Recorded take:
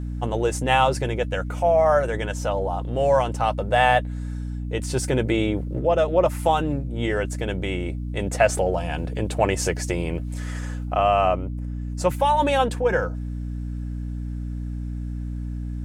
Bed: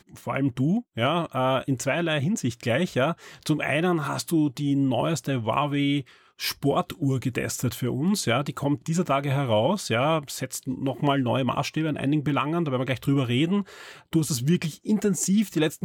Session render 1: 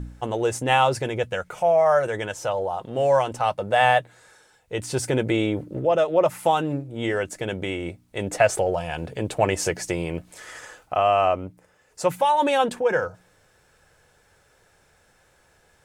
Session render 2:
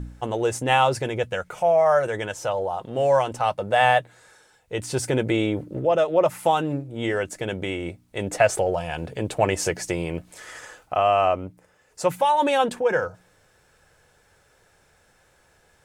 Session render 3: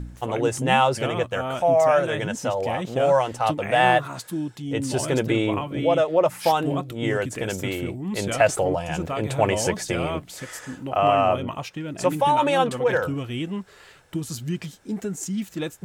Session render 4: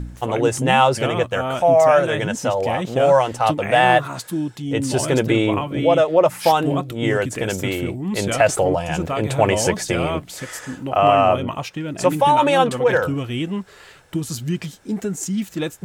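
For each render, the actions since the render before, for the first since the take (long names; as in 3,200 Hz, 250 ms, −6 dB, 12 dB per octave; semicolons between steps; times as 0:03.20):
hum removal 60 Hz, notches 5
no processing that can be heard
mix in bed −6 dB
level +4.5 dB; brickwall limiter −3 dBFS, peak gain reduction 3 dB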